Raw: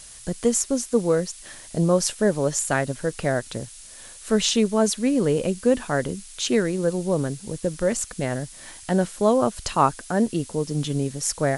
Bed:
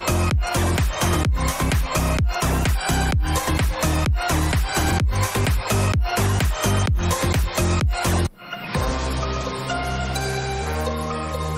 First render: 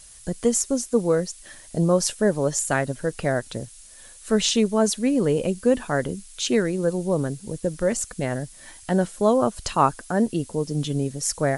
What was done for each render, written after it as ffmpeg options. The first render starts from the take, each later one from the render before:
-af "afftdn=nr=6:nf=-44"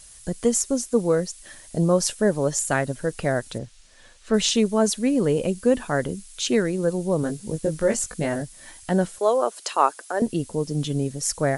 -filter_complex "[0:a]asettb=1/sr,asplit=3[a][b][c];[a]atrim=end=3.584[d];[b]atrim=start=3.58:end=4.34,asetpts=PTS-STARTPTS,afade=t=in:d=0.004:c=qsin,afade=t=out:st=0.756:d=0.004:c=qsin,lowpass=4.6k[e];[c]atrim=start=4.336[f];[d][e]acrossfade=d=0.004:c1=hsin:c2=qsin[g];[g][f]acrossfade=d=0.004:c1=qsin:c2=hsin,asettb=1/sr,asplit=3[h][i][j];[h]atrim=end=7.214[k];[i]atrim=start=7.21:end=8.42,asetpts=PTS-STARTPTS,afade=t=in:d=0.004:c=qsin,afade=t=out:st=1.206:d=0.004:c=qsin,asplit=2[l][m];[m]adelay=19,volume=-4dB[n];[l][n]amix=inputs=2:normalize=0,atrim=end_sample=53361[o];[j]atrim=start=8.416[p];[k][o]acrossfade=d=0.004:c1=hsin:c2=qsin[q];[q][p]acrossfade=d=0.004:c1=qsin:c2=hsin,asettb=1/sr,asplit=3[r][s][t];[r]atrim=end=9.184[u];[s]atrim=start=9.18:end=10.22,asetpts=PTS-STARTPTS,afade=t=in:d=0.004:c=qsin,afade=t=out:st=1.036:d=0.004:c=qsin,highpass=f=370:w=0.5412,highpass=f=370:w=1.3066[v];[t]atrim=start=10.216[w];[u][v]acrossfade=d=0.004:c1=hsin:c2=qsin[x];[x][w]acrossfade=d=0.004:c1=qsin:c2=hsin"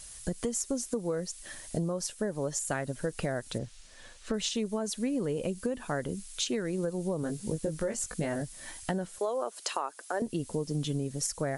-af "alimiter=limit=-15dB:level=0:latency=1:release=483,acompressor=threshold=-28dB:ratio=6"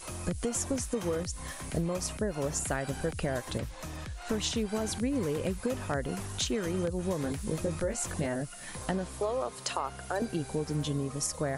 -filter_complex "[1:a]volume=-20.5dB[a];[0:a][a]amix=inputs=2:normalize=0"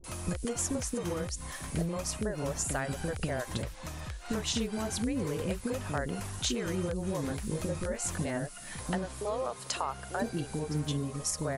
-filter_complex "[0:a]acrossover=split=420[a][b];[b]adelay=40[c];[a][c]amix=inputs=2:normalize=0"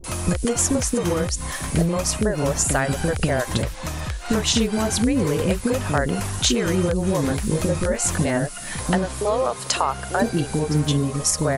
-af "volume=12dB"

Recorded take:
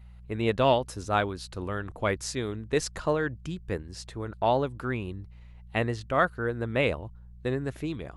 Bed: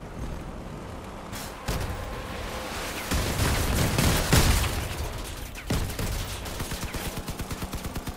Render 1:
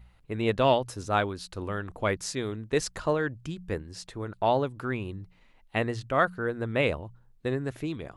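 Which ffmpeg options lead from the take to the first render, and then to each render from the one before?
-af "bandreject=f=60:t=h:w=4,bandreject=f=120:t=h:w=4,bandreject=f=180:t=h:w=4"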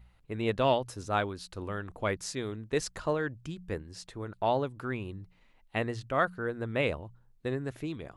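-af "volume=-3.5dB"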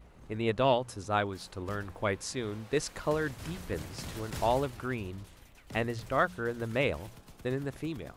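-filter_complex "[1:a]volume=-19.5dB[a];[0:a][a]amix=inputs=2:normalize=0"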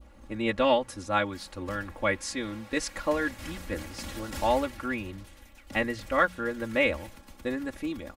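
-af "aecho=1:1:3.6:0.89,adynamicequalizer=threshold=0.00562:dfrequency=2000:dqfactor=2:tfrequency=2000:tqfactor=2:attack=5:release=100:ratio=0.375:range=3:mode=boostabove:tftype=bell"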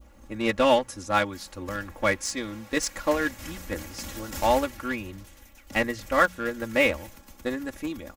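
-filter_complex "[0:a]aexciter=amount=2:drive=3.5:freq=5.6k,asplit=2[a][b];[b]acrusher=bits=3:mix=0:aa=0.5,volume=-7.5dB[c];[a][c]amix=inputs=2:normalize=0"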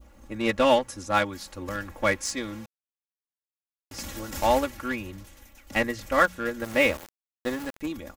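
-filter_complex "[0:a]asettb=1/sr,asplit=3[a][b][c];[a]atrim=end=6.644[d];[b]atrim=start=6.64:end=7.81,asetpts=PTS-STARTPTS,afade=t=in:d=0.004:c=qsin,afade=t=out:st=1.166:d=0.004:c=qsin,aeval=exprs='val(0)*gte(abs(val(0)),0.0178)':c=same[e];[c]atrim=start=7.806[f];[d][e]acrossfade=d=0.004:c1=hsin:c2=qsin[g];[g][f]acrossfade=d=0.004:c1=qsin:c2=hsin,asplit=3[h][i][j];[h]atrim=end=2.66,asetpts=PTS-STARTPTS,afade=t=out:st=2.656:d=0.004:c=hsin[k];[i]atrim=start=2.66:end=3.91,asetpts=PTS-STARTPTS,volume=0[l];[j]atrim=start=3.91,asetpts=PTS-STARTPTS,afade=t=in:d=0.004:c=hsin[m];[k][l][m]concat=n=3:v=0:a=1"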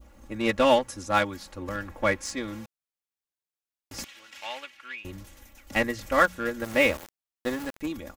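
-filter_complex "[0:a]asettb=1/sr,asplit=3[a][b][c];[a]atrim=end=1.364[d];[b]atrim=start=1.36:end=2.48,asetpts=PTS-STARTPTS,afade=t=in:d=0.004:c=qsin,afade=t=out:st=1.116:d=0.004:c=qsin,highshelf=f=3.7k:g=-6[e];[c]atrim=start=2.476[f];[d][e]acrossfade=d=0.004:c1=hsin:c2=qsin[g];[g][f]acrossfade=d=0.004:c1=qsin:c2=hsin,asettb=1/sr,asplit=3[h][i][j];[h]atrim=end=4.044[k];[i]atrim=start=4.04:end=5.05,asetpts=PTS-STARTPTS,afade=t=in:d=0.004:c=qsin,afade=t=out:st=1.006:d=0.004:c=qsin,bandpass=f=2.7k:t=q:w=2.1[l];[j]atrim=start=5.046[m];[k][l]acrossfade=d=0.004:c1=hsin:c2=qsin[n];[n][m]acrossfade=d=0.004:c1=qsin:c2=hsin"

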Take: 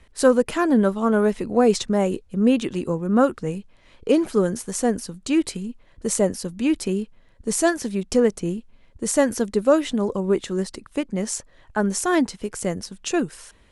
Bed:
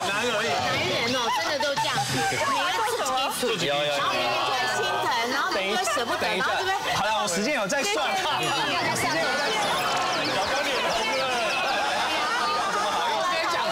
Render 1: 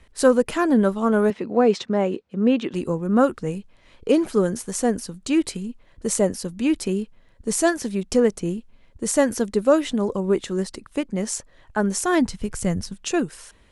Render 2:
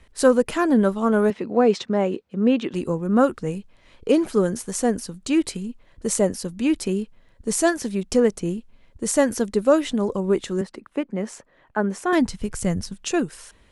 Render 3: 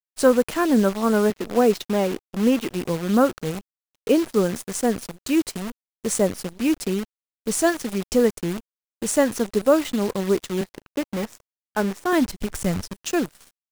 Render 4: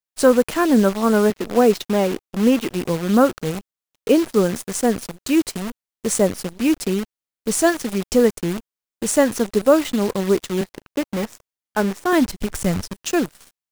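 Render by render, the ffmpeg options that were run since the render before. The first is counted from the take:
-filter_complex "[0:a]asettb=1/sr,asplit=3[a][b][c];[a]atrim=end=1.304[d];[b]atrim=start=1.3:end=2.74,asetpts=PTS-STARTPTS,afade=t=in:d=0.004:c=qsin,afade=t=out:st=1.436:d=0.004:c=qsin,highpass=180,lowpass=3.9k[e];[c]atrim=start=2.736[f];[d][e]acrossfade=d=0.004:c1=hsin:c2=qsin[g];[g][f]acrossfade=d=0.004:c1=qsin:c2=hsin,asplit=3[h][i][j];[h]afade=t=out:st=12.2:d=0.02[k];[i]asubboost=boost=4:cutoff=170,afade=t=in:st=12.2:d=0.02,afade=t=out:st=12.93:d=0.02[l];[j]afade=t=in:st=12.93:d=0.02[m];[k][l][m]amix=inputs=3:normalize=0"
-filter_complex "[0:a]asettb=1/sr,asplit=3[a][b][c];[a]atrim=end=10.614[d];[b]atrim=start=10.61:end=12.13,asetpts=PTS-STARTPTS,afade=t=in:d=0.004:c=qsin,afade=t=out:st=1.516:d=0.004:c=qsin,acrossover=split=150 2800:gain=0.178 1 0.2[e][f][g];[e][f][g]amix=inputs=3:normalize=0[h];[c]atrim=start=12.126[i];[d][h]acrossfade=d=0.004:c1=hsin:c2=qsin[j];[j][i]acrossfade=d=0.004:c1=qsin:c2=hsin"
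-af "aeval=exprs='sgn(val(0))*max(abs(val(0))-0.00668,0)':c=same,acrusher=bits=6:dc=4:mix=0:aa=0.000001"
-af "volume=3dB,alimiter=limit=-2dB:level=0:latency=1"

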